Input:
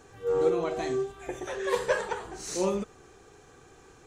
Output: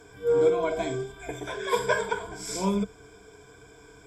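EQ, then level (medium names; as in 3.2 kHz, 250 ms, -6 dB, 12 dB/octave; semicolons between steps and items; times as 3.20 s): rippled EQ curve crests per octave 1.7, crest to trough 17 dB; 0.0 dB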